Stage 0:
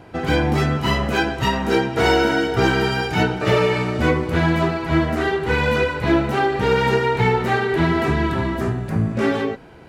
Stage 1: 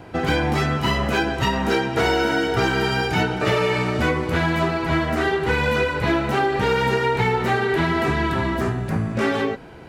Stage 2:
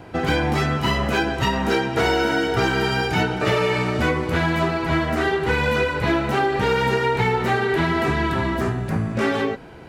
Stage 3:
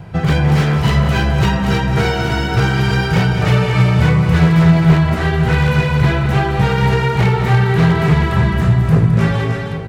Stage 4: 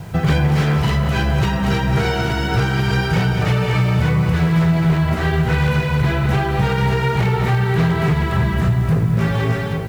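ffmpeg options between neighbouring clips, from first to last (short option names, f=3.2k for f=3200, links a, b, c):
-filter_complex "[0:a]acrossover=split=680|7600[a][b][c];[a]acompressor=threshold=-23dB:ratio=4[d];[b]acompressor=threshold=-24dB:ratio=4[e];[c]acompressor=threshold=-49dB:ratio=4[f];[d][e][f]amix=inputs=3:normalize=0,volume=2.5dB"
-af anull
-filter_complex "[0:a]lowshelf=f=210:t=q:w=3:g=8,aeval=exprs='0.398*(abs(mod(val(0)/0.398+3,4)-2)-1)':c=same,asplit=2[a][b];[b]aecho=0:1:213|317|825:0.355|0.501|0.224[c];[a][c]amix=inputs=2:normalize=0,volume=1dB"
-af "alimiter=limit=-10dB:level=0:latency=1:release=388,acrusher=bits=7:mix=0:aa=0.000001,volume=1.5dB"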